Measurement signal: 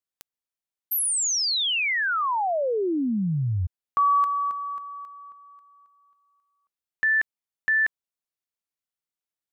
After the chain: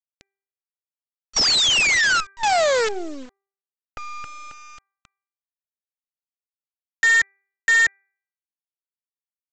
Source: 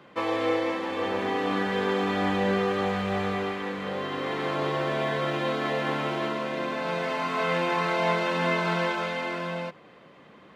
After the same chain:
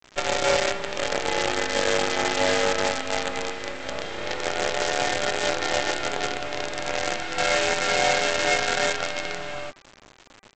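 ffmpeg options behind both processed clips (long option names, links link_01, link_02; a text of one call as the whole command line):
ffmpeg -i in.wav -filter_complex "[0:a]asuperstop=centerf=1000:order=8:qfactor=2.5,afftfilt=real='re*between(b*sr/4096,180,5700)':imag='im*between(b*sr/4096,180,5700)':win_size=4096:overlap=0.75,acrossover=split=290|790[link_01][link_02][link_03];[link_01]acompressor=threshold=-46dB:ratio=8:attack=0.29:release=688:knee=1:detection=peak[link_04];[link_04][link_02][link_03]amix=inputs=3:normalize=0,afreqshift=68,aresample=16000,acrusher=bits=5:dc=4:mix=0:aa=0.000001,aresample=44100,bandreject=frequency=393.6:width_type=h:width=4,bandreject=frequency=787.2:width_type=h:width=4,bandreject=frequency=1180.8:width_type=h:width=4,bandreject=frequency=1574.4:width_type=h:width=4,bandreject=frequency=1968:width_type=h:width=4,bandreject=frequency=2361.6:width_type=h:width=4,volume=5dB" out.wav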